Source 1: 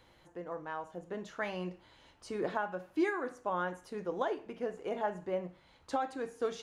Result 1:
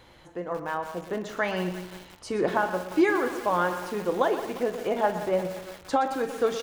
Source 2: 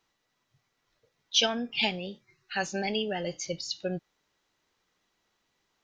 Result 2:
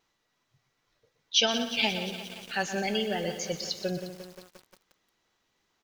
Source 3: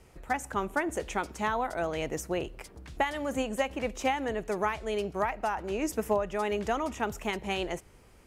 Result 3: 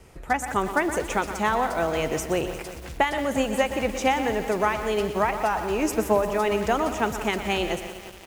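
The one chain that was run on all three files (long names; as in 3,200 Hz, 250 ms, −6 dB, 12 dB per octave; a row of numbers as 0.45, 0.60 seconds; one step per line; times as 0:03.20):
pitch vibrato 2.7 Hz 20 cents
on a send: repeating echo 121 ms, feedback 39%, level −11.5 dB
on the sum: feedback echo at a low word length 176 ms, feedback 80%, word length 7 bits, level −12.5 dB
normalise the peak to −9 dBFS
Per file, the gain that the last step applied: +9.0, +0.5, +6.0 decibels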